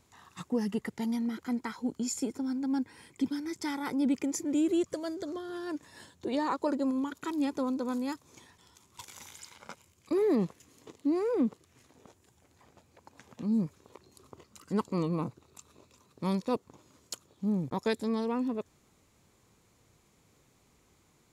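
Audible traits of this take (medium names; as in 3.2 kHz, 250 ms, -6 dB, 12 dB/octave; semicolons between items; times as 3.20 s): noise floor -67 dBFS; spectral tilt -5.5 dB/octave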